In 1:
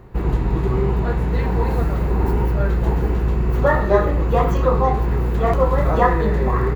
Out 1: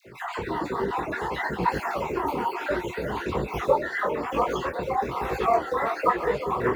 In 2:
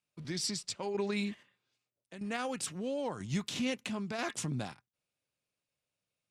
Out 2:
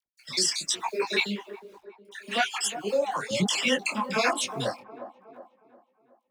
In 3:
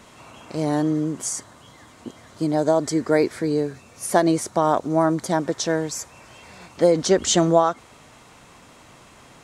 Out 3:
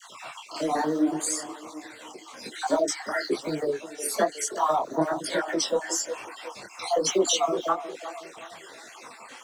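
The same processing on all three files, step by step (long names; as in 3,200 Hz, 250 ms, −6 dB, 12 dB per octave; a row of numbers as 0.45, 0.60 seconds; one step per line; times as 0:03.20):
time-frequency cells dropped at random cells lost 51%
meter weighting curve A
downward compressor 2 to 1, threshold −34 dBFS
log-companded quantiser 8 bits
all-pass dispersion lows, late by 61 ms, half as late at 1,000 Hz
phase shifter 0.6 Hz, delay 4.6 ms, feedback 49%
on a send: delay with a band-pass on its return 363 ms, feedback 42%, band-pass 530 Hz, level −10 dB
on the sum: micro pitch shift up and down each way 39 cents
loudness normalisation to −27 LKFS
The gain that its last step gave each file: +10.0, +18.0, +10.0 decibels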